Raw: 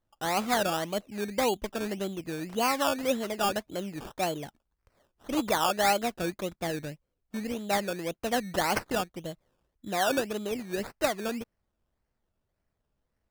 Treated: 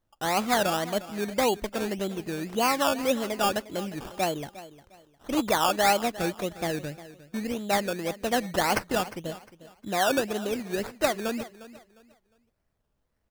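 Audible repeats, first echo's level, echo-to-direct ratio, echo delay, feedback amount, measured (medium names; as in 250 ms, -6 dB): 2, -16.5 dB, -16.0 dB, 355 ms, 28%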